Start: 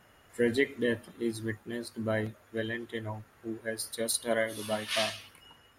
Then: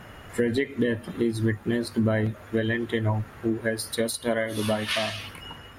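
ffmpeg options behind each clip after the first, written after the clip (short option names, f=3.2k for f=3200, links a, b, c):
-filter_complex "[0:a]asplit=2[a][b];[b]alimiter=limit=-22.5dB:level=0:latency=1:release=191,volume=1.5dB[c];[a][c]amix=inputs=2:normalize=0,acompressor=threshold=-32dB:ratio=4,bass=f=250:g=5,treble=f=4k:g=-6,volume=8dB"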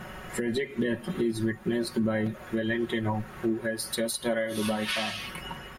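-af "aecho=1:1:5.4:0.69,alimiter=limit=-20.5dB:level=0:latency=1:release=331,volume=2dB"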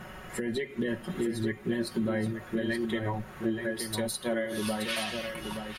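-af "aecho=1:1:875:0.473,volume=-3dB"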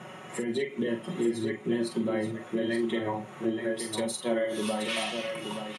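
-filter_complex "[0:a]highpass=f=140:w=0.5412,highpass=f=140:w=1.3066,equalizer=f=200:t=q:w=4:g=-4,equalizer=f=1.6k:t=q:w=4:g=-8,equalizer=f=4.7k:t=q:w=4:g=-8,lowpass=f=9.6k:w=0.5412,lowpass=f=9.6k:w=1.3066,asplit=2[a][b];[b]adelay=43,volume=-7dB[c];[a][c]amix=inputs=2:normalize=0,volume=2dB"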